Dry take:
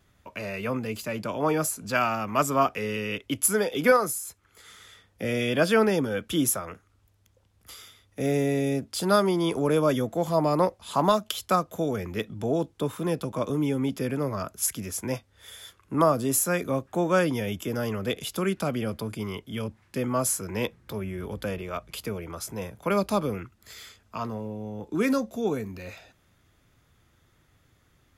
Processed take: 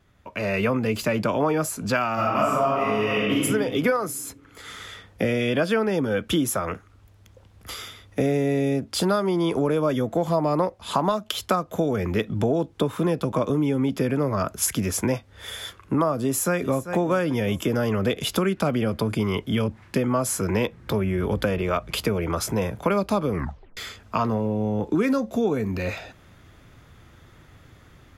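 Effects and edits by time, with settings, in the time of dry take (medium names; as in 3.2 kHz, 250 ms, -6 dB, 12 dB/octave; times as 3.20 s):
2.14–3.39 s: reverb throw, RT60 1.4 s, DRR -9 dB
16.22–16.91 s: echo throw 390 ms, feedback 35%, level -14.5 dB
23.32 s: tape stop 0.45 s
whole clip: level rider gain up to 11 dB; treble shelf 4.8 kHz -9 dB; compression, threshold -22 dBFS; trim +2.5 dB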